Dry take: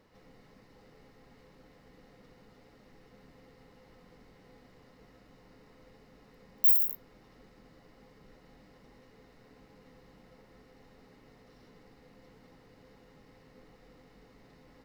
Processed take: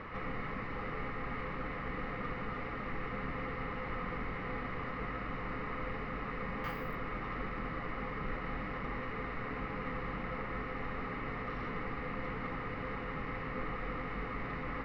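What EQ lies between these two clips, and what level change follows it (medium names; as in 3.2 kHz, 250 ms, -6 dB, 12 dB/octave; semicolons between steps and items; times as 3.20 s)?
resonant low-pass 2.2 kHz, resonance Q 2.7; bass shelf 120 Hz +7 dB; peaking EQ 1.2 kHz +14.5 dB 0.31 oct; +15.0 dB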